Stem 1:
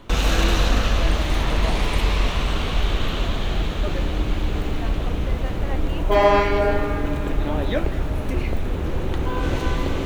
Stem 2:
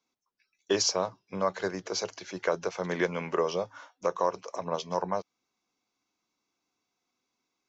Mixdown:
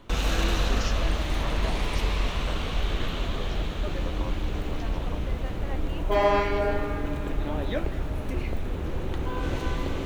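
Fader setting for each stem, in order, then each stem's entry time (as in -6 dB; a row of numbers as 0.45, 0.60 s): -6.0, -13.5 dB; 0.00, 0.00 s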